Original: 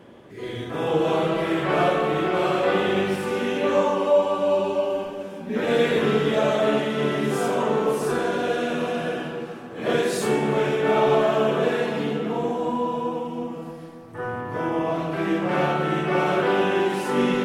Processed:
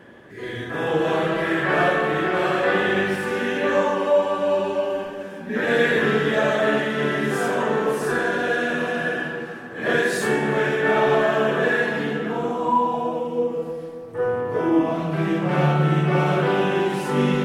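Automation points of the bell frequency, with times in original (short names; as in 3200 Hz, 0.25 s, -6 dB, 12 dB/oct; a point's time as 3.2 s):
bell +13 dB 0.31 oct
12.27 s 1700 Hz
13.4 s 470 Hz
14.53 s 470 Hz
15.21 s 150 Hz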